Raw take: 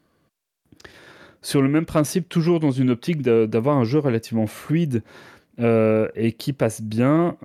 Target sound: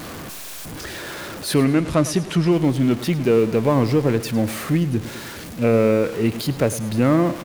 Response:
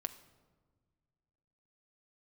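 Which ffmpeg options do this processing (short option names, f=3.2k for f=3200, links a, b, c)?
-filter_complex "[0:a]aeval=exprs='val(0)+0.5*0.0398*sgn(val(0))':c=same,asettb=1/sr,asplit=3[a][b][c];[a]atrim=end=1.654[d];[b]atrim=start=1.65:end=2.52,asetpts=PTS-STARTPTS,afade=t=in:d=0.004:c=qsin,afade=t=out:st=0.866:d=0.004:c=qsin,lowpass=9.7k[e];[c]atrim=start=2.516[f];[d][e]acrossfade=d=0.004:c1=hsin:c2=qsin[g];[g][f]acrossfade=d=0.004:c1=qsin:c2=hsin,asettb=1/sr,asplit=3[h][i][j];[h]atrim=end=4.774[k];[i]atrim=start=4.77:end=5.62,asetpts=PTS-STARTPTS,afade=t=in:d=0.004:c=qsin,afade=t=out:st=0.846:d=0.004:c=qsin,equalizer=f=920:w=0.53:g=-4.5[l];[j]atrim=start=5.616[m];[k][l]acrossfade=d=0.004:c1=hsin:c2=qsin[n];[n][m]acrossfade=d=0.004:c1=qsin:c2=hsin,aecho=1:1:104|208|312|416:0.168|0.0772|0.0355|0.0163"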